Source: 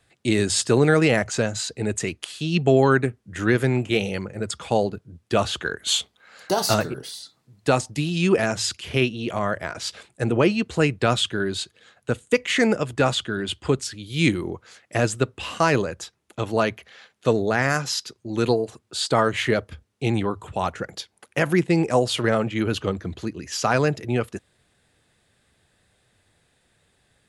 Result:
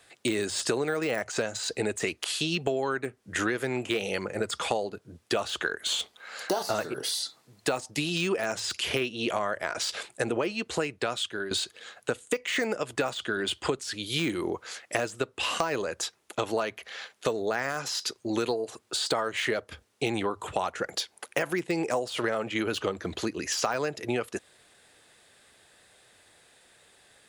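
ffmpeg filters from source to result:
-filter_complex "[0:a]asplit=2[s0][s1];[s0]atrim=end=11.51,asetpts=PTS-STARTPTS,afade=t=out:st=10.4:d=1.11:silence=0.16788[s2];[s1]atrim=start=11.51,asetpts=PTS-STARTPTS,afade=t=in:d=0.004:c=hsin:silence=0.16788[s3];[s2][s3]concat=n=2:v=0:a=1,deesser=0.7,bass=f=250:g=-14,treble=f=4000:g=2,acompressor=threshold=0.0251:ratio=10,volume=2.24"

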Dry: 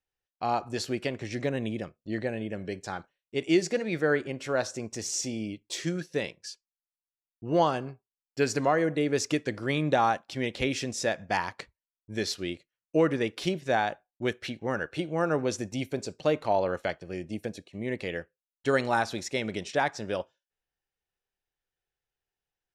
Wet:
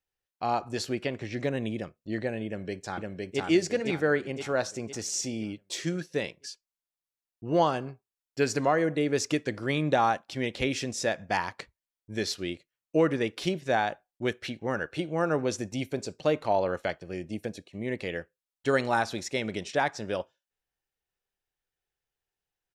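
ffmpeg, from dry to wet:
-filter_complex "[0:a]asettb=1/sr,asplit=3[s0][s1][s2];[s0]atrim=end=0.894[s3];[s1]atrim=start=0.89:end=1.39,asetpts=PTS-STARTPTS,afade=t=in:d=0.004:c=qsin,afade=t=out:st=0.496:d=0.004:c=qsin,acrossover=split=4900[s4][s5];[s5]acompressor=threshold=0.001:ratio=4:attack=1:release=60[s6];[s4][s6]amix=inputs=2:normalize=0[s7];[s2]atrim=start=1.386[s8];[s3][s7]acrossfade=d=0.004:c1=hsin:c2=qsin[s9];[s9][s8]acrossfade=d=0.004:c1=qsin:c2=hsin,asplit=2[s10][s11];[s11]afade=t=in:st=2.46:d=0.01,afade=t=out:st=3.42:d=0.01,aecho=0:1:510|1020|1530|2040|2550|3060:0.841395|0.378628|0.170383|0.0766721|0.0345025|0.0155261[s12];[s10][s12]amix=inputs=2:normalize=0"

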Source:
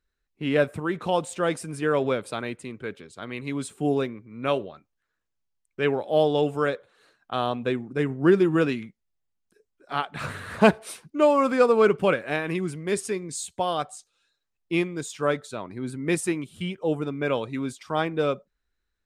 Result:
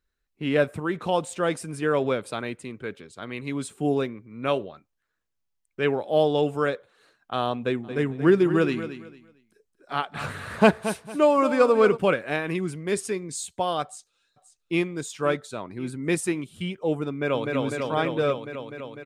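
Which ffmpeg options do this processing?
-filter_complex "[0:a]asplit=3[s0][s1][s2];[s0]afade=t=out:st=7.83:d=0.02[s3];[s1]aecho=1:1:226|452|678:0.266|0.0665|0.0166,afade=t=in:st=7.83:d=0.02,afade=t=out:st=11.96:d=0.02[s4];[s2]afade=t=in:st=11.96:d=0.02[s5];[s3][s4][s5]amix=inputs=3:normalize=0,asplit=2[s6][s7];[s7]afade=t=in:st=13.83:d=0.01,afade=t=out:st=14.82:d=0.01,aecho=0:1:530|1060|1590|2120:0.199526|0.0897868|0.0404041|0.0181818[s8];[s6][s8]amix=inputs=2:normalize=0,asplit=2[s9][s10];[s10]afade=t=in:st=17.09:d=0.01,afade=t=out:st=17.55:d=0.01,aecho=0:1:250|500|750|1000|1250|1500|1750|2000|2250|2500|2750|3000:0.749894|0.599915|0.479932|0.383946|0.307157|0.245725|0.19658|0.157264|0.125811|0.100649|0.0805193|0.0644154[s11];[s9][s11]amix=inputs=2:normalize=0"

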